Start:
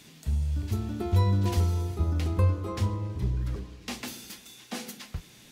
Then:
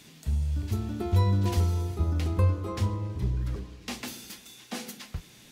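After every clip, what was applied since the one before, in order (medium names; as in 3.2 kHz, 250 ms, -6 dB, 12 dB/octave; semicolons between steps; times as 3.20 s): no audible change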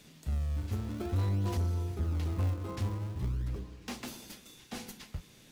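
in parallel at -7 dB: decimation with a swept rate 41×, swing 160% 0.46 Hz; on the sum: saturation -19.5 dBFS, distortion -13 dB; trim -6 dB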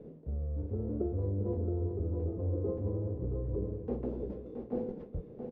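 reverse; compression, threshold -41 dBFS, peak gain reduction 12.5 dB; reverse; resonant low-pass 470 Hz, resonance Q 4.9; delay 672 ms -6.5 dB; trim +6.5 dB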